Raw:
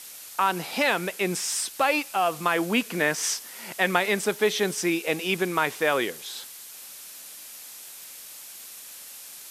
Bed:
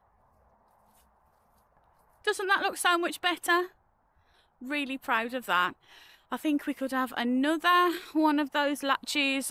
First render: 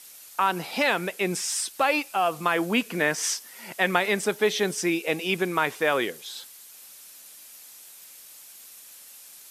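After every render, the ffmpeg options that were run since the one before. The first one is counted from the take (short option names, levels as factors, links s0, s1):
-af "afftdn=nr=6:nf=-43"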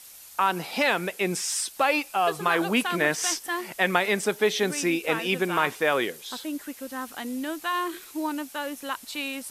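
-filter_complex "[1:a]volume=0.562[s0];[0:a][s0]amix=inputs=2:normalize=0"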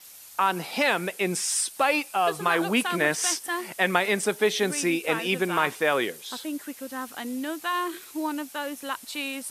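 -af "highpass=68,adynamicequalizer=threshold=0.00316:dfrequency=9200:dqfactor=4:tfrequency=9200:tqfactor=4:attack=5:release=100:ratio=0.375:range=3:mode=boostabove:tftype=bell"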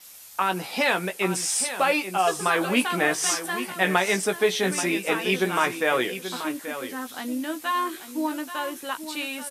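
-filter_complex "[0:a]asplit=2[s0][s1];[s1]adelay=16,volume=0.473[s2];[s0][s2]amix=inputs=2:normalize=0,asplit=2[s3][s4];[s4]aecho=0:1:832:0.282[s5];[s3][s5]amix=inputs=2:normalize=0"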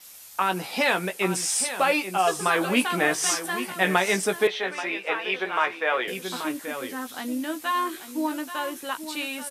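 -filter_complex "[0:a]asettb=1/sr,asplit=3[s0][s1][s2];[s0]atrim=end=4.474[s3];[s1]atrim=start=4.47:end=6.08,asetpts=PTS-STARTPTS,afade=t=in:d=0.004:c=qsin,afade=t=out:st=1.606:d=0.004:c=qsin,acrossover=split=430 3900:gain=0.1 1 0.0794[s4][s5][s6];[s4][s5][s6]amix=inputs=3:normalize=0[s7];[s2]atrim=start=6.076[s8];[s3][s7]acrossfade=d=0.004:c1=hsin:c2=qsin[s9];[s9][s8]acrossfade=d=0.004:c1=qsin:c2=hsin"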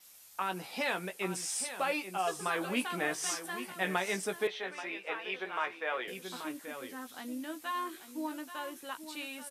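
-af "volume=0.299"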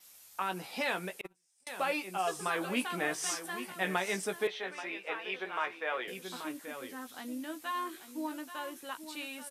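-filter_complex "[0:a]asettb=1/sr,asplit=3[s0][s1][s2];[s0]atrim=end=1.214[s3];[s1]atrim=start=1.21:end=1.67,asetpts=PTS-STARTPTS,afade=t=in:d=0.004:c=qsin,afade=t=out:st=0.456:d=0.004:c=qsin,agate=range=0.0126:threshold=0.0282:ratio=16:release=100:detection=peak[s4];[s2]atrim=start=1.666[s5];[s3][s4]acrossfade=d=0.004:c1=hsin:c2=qsin[s6];[s6][s5]acrossfade=d=0.004:c1=qsin:c2=hsin"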